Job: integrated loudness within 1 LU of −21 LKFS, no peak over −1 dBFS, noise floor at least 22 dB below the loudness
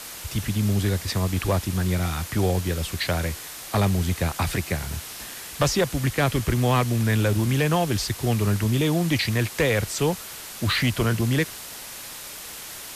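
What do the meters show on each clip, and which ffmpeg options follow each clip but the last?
background noise floor −38 dBFS; target noise floor −46 dBFS; integrated loudness −24.0 LKFS; sample peak −11.5 dBFS; target loudness −21.0 LKFS
→ -af "afftdn=noise_reduction=8:noise_floor=-38"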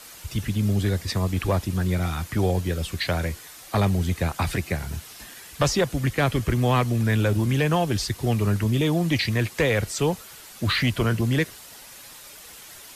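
background noise floor −44 dBFS; target noise floor −47 dBFS
→ -af "afftdn=noise_reduction=6:noise_floor=-44"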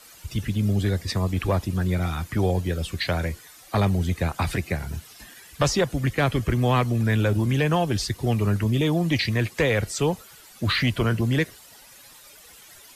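background noise floor −49 dBFS; integrated loudness −24.5 LKFS; sample peak −12.0 dBFS; target loudness −21.0 LKFS
→ -af "volume=3.5dB"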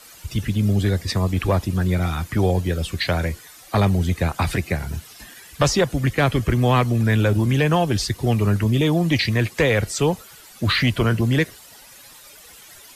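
integrated loudness −21.0 LKFS; sample peak −8.5 dBFS; background noise floor −45 dBFS

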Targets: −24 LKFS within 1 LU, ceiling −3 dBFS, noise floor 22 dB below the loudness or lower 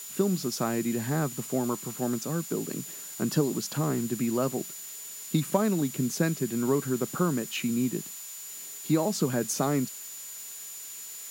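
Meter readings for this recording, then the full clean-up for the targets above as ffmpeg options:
interfering tone 7,000 Hz; level of the tone −42 dBFS; background noise floor −41 dBFS; target noise floor −52 dBFS; integrated loudness −29.5 LKFS; sample peak −10.0 dBFS; target loudness −24.0 LKFS
→ -af "bandreject=frequency=7000:width=30"
-af "afftdn=noise_reduction=11:noise_floor=-41"
-af "volume=5.5dB"

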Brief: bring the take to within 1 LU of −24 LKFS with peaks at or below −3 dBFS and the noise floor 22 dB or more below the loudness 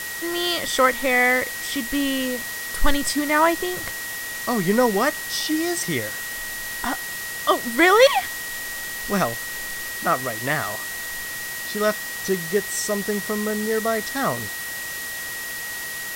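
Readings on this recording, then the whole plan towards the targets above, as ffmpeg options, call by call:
interfering tone 1,900 Hz; level of the tone −31 dBFS; background noise floor −31 dBFS; target noise floor −45 dBFS; integrated loudness −22.5 LKFS; sample peak −3.5 dBFS; target loudness −24.0 LKFS
→ -af "bandreject=frequency=1900:width=30"
-af "afftdn=noise_reduction=14:noise_floor=-31"
-af "volume=-1.5dB"

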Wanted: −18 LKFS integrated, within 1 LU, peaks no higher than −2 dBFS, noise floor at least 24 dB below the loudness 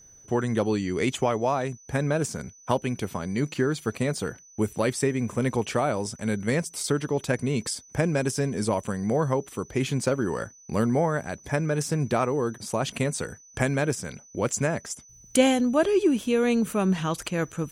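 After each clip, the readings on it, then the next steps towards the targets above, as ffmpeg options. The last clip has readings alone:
interfering tone 6,000 Hz; level of the tone −50 dBFS; integrated loudness −26.5 LKFS; sample peak −7.0 dBFS; target loudness −18.0 LKFS
→ -af "bandreject=frequency=6000:width=30"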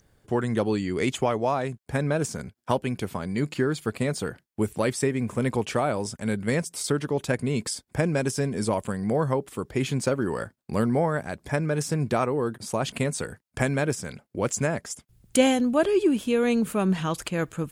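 interfering tone none found; integrated loudness −26.5 LKFS; sample peak −7.0 dBFS; target loudness −18.0 LKFS
→ -af "volume=8.5dB,alimiter=limit=-2dB:level=0:latency=1"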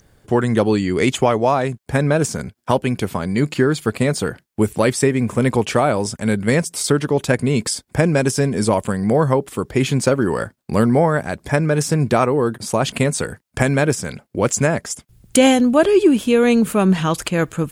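integrated loudness −18.0 LKFS; sample peak −2.0 dBFS; background noise floor −63 dBFS

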